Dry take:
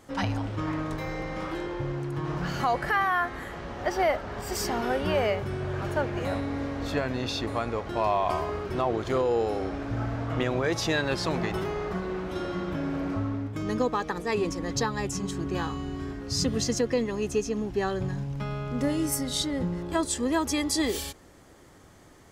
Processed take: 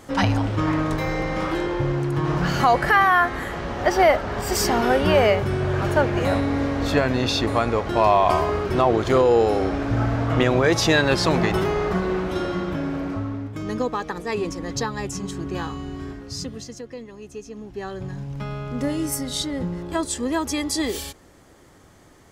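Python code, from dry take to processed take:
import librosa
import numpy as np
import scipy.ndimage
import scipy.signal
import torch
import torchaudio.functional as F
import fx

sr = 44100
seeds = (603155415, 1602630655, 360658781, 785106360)

y = fx.gain(x, sr, db=fx.line((12.13, 8.5), (13.24, 1.5), (16.11, 1.5), (16.71, -10.5), (17.28, -10.5), (18.39, 2.0)))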